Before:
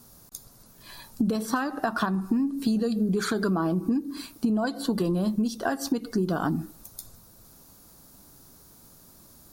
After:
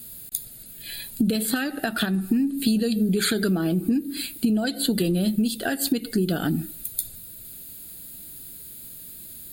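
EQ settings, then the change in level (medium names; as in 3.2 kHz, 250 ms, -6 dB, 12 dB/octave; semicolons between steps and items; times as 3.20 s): treble shelf 2.5 kHz +11.5 dB; peaking EQ 5.6 kHz +4 dB 2.2 oct; static phaser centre 2.5 kHz, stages 4; +3.5 dB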